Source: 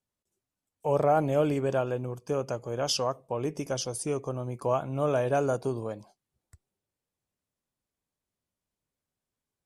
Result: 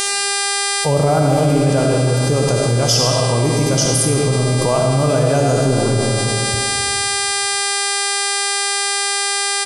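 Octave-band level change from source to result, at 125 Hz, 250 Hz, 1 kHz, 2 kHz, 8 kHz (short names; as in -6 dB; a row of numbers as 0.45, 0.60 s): +19.0, +15.0, +12.5, +23.5, +24.5 dB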